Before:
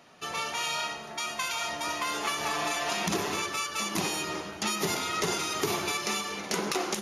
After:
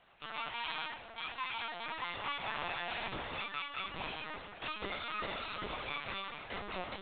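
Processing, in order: chorus 1.4 Hz, delay 17.5 ms, depth 3.7 ms; LPC vocoder at 8 kHz pitch kept; low shelf 340 Hz -11 dB; gain -3 dB

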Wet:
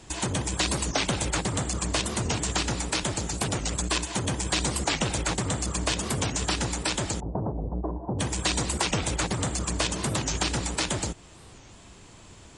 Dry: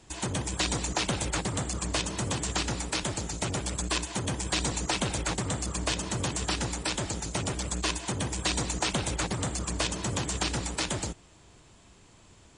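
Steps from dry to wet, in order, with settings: 7.2–8.19 steep low-pass 880 Hz 36 dB/oct; in parallel at +1.5 dB: compressor, threshold -37 dBFS, peak gain reduction 12.5 dB; on the sum: record warp 45 rpm, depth 250 cents

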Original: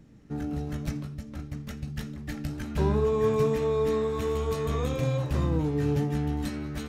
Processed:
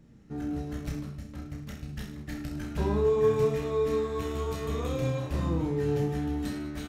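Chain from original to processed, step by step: reverse bouncing-ball echo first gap 30 ms, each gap 1.15×, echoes 5; gain -4 dB

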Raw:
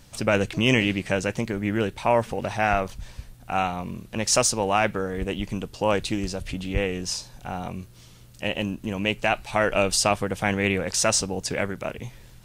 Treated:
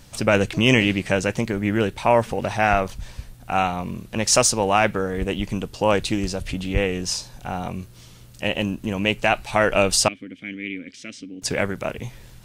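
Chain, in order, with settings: 10.08–11.42 vowel filter i; gain +3.5 dB

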